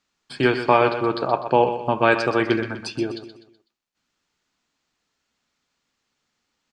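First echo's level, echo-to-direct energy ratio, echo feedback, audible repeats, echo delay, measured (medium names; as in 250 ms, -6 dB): -10.5 dB, -9.5 dB, 40%, 4, 125 ms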